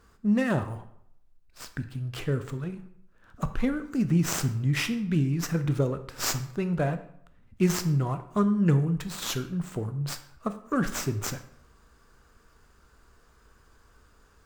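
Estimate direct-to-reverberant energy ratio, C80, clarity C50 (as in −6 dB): 9.0 dB, 15.5 dB, 12.5 dB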